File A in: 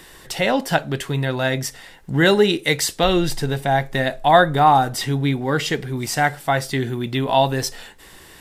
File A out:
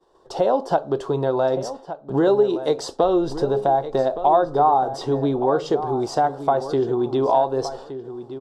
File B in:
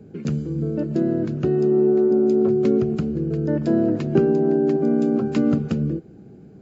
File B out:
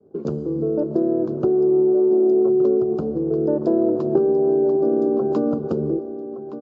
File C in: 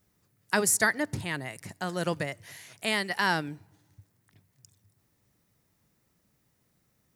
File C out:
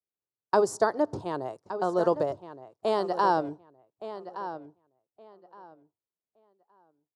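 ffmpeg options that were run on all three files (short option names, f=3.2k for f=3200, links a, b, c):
-filter_complex "[0:a]firequalizer=gain_entry='entry(150,0);entry(250,4);entry(370,15);entry(1100,12);entry(2000,-16);entry(3300,-4);entry(5000,-1);entry(14000,-25)':delay=0.05:min_phase=1,agate=range=-33dB:threshold=-27dB:ratio=3:detection=peak,acompressor=threshold=-12dB:ratio=3,asplit=2[a][b];[b]adelay=1168,lowpass=f=3.5k:p=1,volume=-12dB,asplit=2[c][d];[d]adelay=1168,lowpass=f=3.5k:p=1,volume=0.21,asplit=2[e][f];[f]adelay=1168,lowpass=f=3.5k:p=1,volume=0.21[g];[c][e][g]amix=inputs=3:normalize=0[h];[a][h]amix=inputs=2:normalize=0,volume=-5.5dB"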